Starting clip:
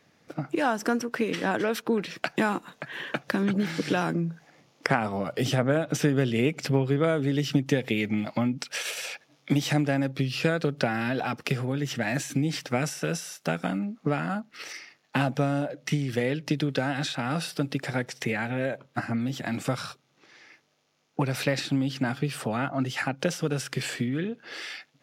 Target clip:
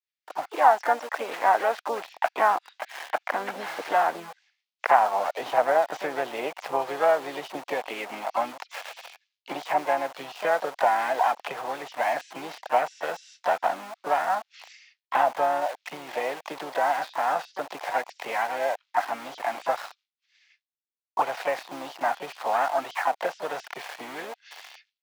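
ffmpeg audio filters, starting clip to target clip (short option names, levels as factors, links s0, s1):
-filter_complex "[0:a]agate=range=0.0224:threshold=0.00447:ratio=3:detection=peak,lowpass=f=4800:w=0.5412,lowpass=f=4800:w=1.3066,acrossover=split=2100[s0][s1];[s0]aeval=exprs='val(0)*gte(abs(val(0)),0.0158)':c=same[s2];[s1]acompressor=threshold=0.00398:ratio=16[s3];[s2][s3]amix=inputs=2:normalize=0,highpass=f=740:t=q:w=3.7,asplit=2[s4][s5];[s5]asetrate=55563,aresample=44100,atempo=0.793701,volume=0.501[s6];[s4][s6]amix=inputs=2:normalize=0"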